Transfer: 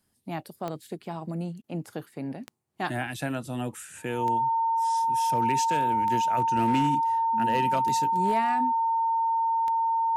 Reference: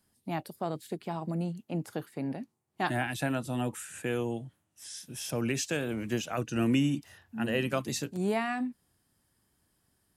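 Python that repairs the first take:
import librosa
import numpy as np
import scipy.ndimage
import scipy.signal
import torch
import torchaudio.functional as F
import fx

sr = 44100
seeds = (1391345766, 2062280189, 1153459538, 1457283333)

y = fx.fix_declip(x, sr, threshold_db=-17.5)
y = fx.fix_declick_ar(y, sr, threshold=10.0)
y = fx.notch(y, sr, hz=910.0, q=30.0)
y = fx.fix_interpolate(y, sr, at_s=(1.62,), length_ms=17.0)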